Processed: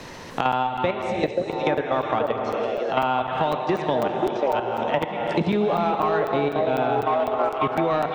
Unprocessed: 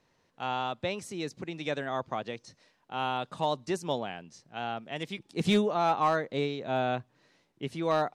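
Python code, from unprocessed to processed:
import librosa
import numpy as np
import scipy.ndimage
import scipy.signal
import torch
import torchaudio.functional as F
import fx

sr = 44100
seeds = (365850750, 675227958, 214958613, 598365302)

p1 = x + fx.echo_stepped(x, sr, ms=528, hz=460.0, octaves=0.7, feedback_pct=70, wet_db=-0.5, dry=0)
p2 = fx.level_steps(p1, sr, step_db=16)
p3 = fx.env_lowpass_down(p2, sr, base_hz=2700.0, full_db=-34.0)
p4 = fx.rev_gated(p3, sr, seeds[0], gate_ms=460, shape='flat', drr_db=5.5)
p5 = 10.0 ** (-30.5 / 20.0) * np.tanh(p4 / 10.0 ** (-30.5 / 20.0))
p6 = p4 + (p5 * librosa.db_to_amplitude(-11.0))
p7 = fx.buffer_crackle(p6, sr, first_s=0.52, period_s=0.25, block=256, kind='zero')
p8 = fx.band_squash(p7, sr, depth_pct=100)
y = p8 * librosa.db_to_amplitude(8.5)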